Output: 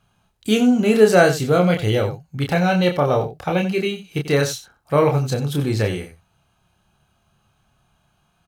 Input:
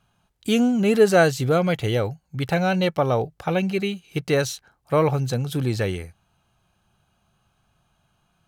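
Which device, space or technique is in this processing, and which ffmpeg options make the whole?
slapback doubling: -filter_complex "[0:a]asplit=3[a][b][c];[b]adelay=28,volume=-4dB[d];[c]adelay=90,volume=-12dB[e];[a][d][e]amix=inputs=3:normalize=0,volume=1.5dB"

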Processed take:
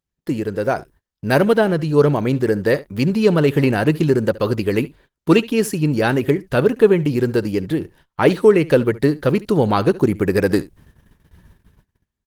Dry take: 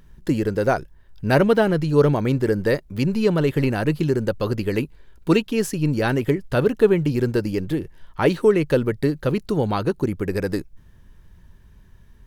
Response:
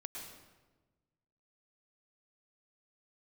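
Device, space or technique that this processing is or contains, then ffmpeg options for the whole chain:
video call: -filter_complex "[0:a]asplit=3[a][b][c];[a]afade=t=out:st=0.76:d=0.02[d];[b]highshelf=f=5.6k:g=5.5,afade=t=in:st=0.76:d=0.02,afade=t=out:st=1.54:d=0.02[e];[c]afade=t=in:st=1.54:d=0.02[f];[d][e][f]amix=inputs=3:normalize=0,highpass=f=110:p=1,aecho=1:1:70:0.106,dynaudnorm=f=450:g=5:m=12dB,agate=range=-29dB:threshold=-45dB:ratio=16:detection=peak" -ar 48000 -c:a libopus -b:a 24k

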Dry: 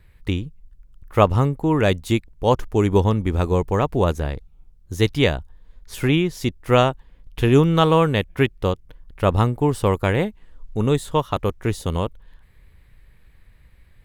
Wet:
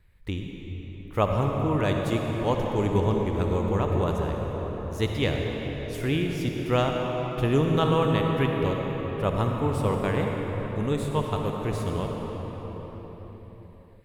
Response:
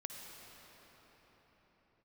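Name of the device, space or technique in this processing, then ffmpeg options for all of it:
cathedral: -filter_complex "[1:a]atrim=start_sample=2205[a];[0:a][a]afir=irnorm=-1:irlink=0,volume=-4dB"

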